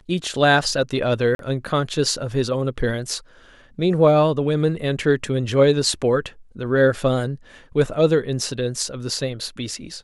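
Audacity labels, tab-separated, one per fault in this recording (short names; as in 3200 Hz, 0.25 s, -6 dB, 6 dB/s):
1.350000	1.390000	gap 42 ms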